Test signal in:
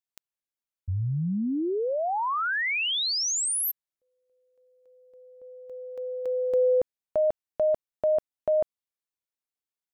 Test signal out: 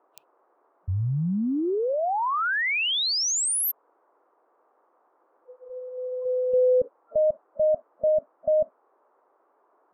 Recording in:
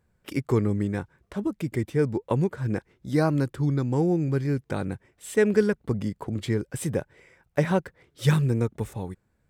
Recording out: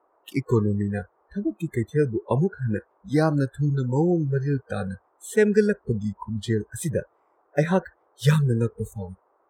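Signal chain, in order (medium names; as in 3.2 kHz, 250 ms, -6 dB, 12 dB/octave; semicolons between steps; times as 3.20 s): band noise 330–1200 Hz -39 dBFS; spectral noise reduction 29 dB; trim +2 dB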